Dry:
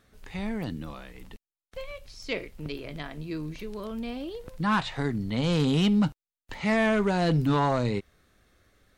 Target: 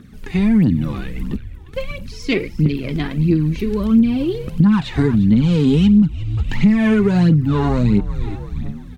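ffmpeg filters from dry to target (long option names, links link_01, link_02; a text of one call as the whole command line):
ffmpeg -i in.wav -filter_complex "[0:a]equalizer=frequency=180:width=0.58:gain=14,asplit=2[link_01][link_02];[link_02]asplit=4[link_03][link_04][link_05][link_06];[link_03]adelay=353,afreqshift=-97,volume=-15.5dB[link_07];[link_04]adelay=706,afreqshift=-194,volume=-21.9dB[link_08];[link_05]adelay=1059,afreqshift=-291,volume=-28.3dB[link_09];[link_06]adelay=1412,afreqshift=-388,volume=-34.6dB[link_10];[link_07][link_08][link_09][link_10]amix=inputs=4:normalize=0[link_11];[link_01][link_11]amix=inputs=2:normalize=0,aphaser=in_gain=1:out_gain=1:delay=2.9:decay=0.58:speed=1.5:type=triangular,acompressor=threshold=-19dB:ratio=10,equalizer=frequency=250:width_type=o:width=0.67:gain=4,equalizer=frequency=630:width_type=o:width=0.67:gain=-7,equalizer=frequency=2500:width_type=o:width=0.67:gain=3,volume=7dB" out.wav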